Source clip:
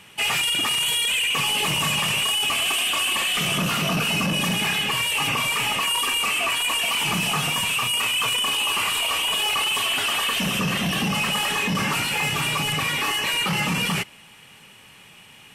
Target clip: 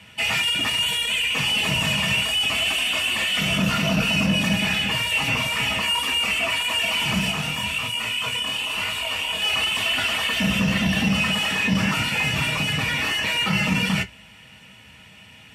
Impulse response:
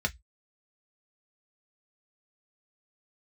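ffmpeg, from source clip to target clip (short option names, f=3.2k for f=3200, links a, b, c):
-filter_complex "[0:a]asplit=3[a][b][c];[a]afade=t=out:st=7.3:d=0.02[d];[b]flanger=delay=18:depth=7.9:speed=1,afade=t=in:st=7.3:d=0.02,afade=t=out:st=9.41:d=0.02[e];[c]afade=t=in:st=9.41:d=0.02[f];[d][e][f]amix=inputs=3:normalize=0[g];[1:a]atrim=start_sample=2205[h];[g][h]afir=irnorm=-1:irlink=0,volume=-6dB"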